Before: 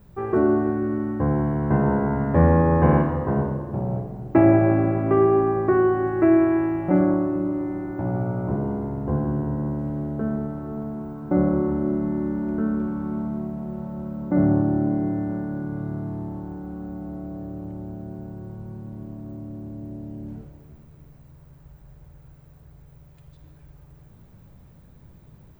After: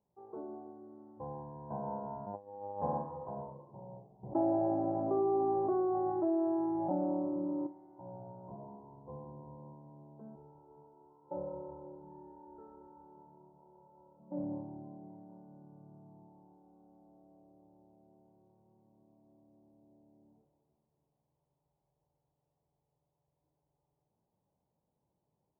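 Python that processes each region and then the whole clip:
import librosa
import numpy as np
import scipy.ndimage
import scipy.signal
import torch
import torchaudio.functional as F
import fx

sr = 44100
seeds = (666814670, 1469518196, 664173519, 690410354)

y = fx.chain(x, sr, fx.bessel_lowpass(hz=1800.0, order=2),
    fx.over_compress(threshold_db=-21.0, ratio=-0.5),
    fx.robotise(hz=101.0), at=(2.26, 2.82))
y = fx.chain(y, sr, fx.high_shelf(hz=2100.0, db=-5.0),
    fx.env_flatten(amount_pct=70), at=(4.23, 7.67))
y = fx.chain(y, sr, fx.law_mismatch(coded='A'),
    fx.comb(ms=2.2, depth=0.82), at=(10.35, 14.2))
y = fx.noise_reduce_blind(y, sr, reduce_db=10)
y = scipy.signal.sosfilt(scipy.signal.ellip(4, 1.0, 80, 890.0, 'lowpass', fs=sr, output='sos'), y)
y = np.diff(y, prepend=0.0)
y = y * 10.0 ** (9.5 / 20.0)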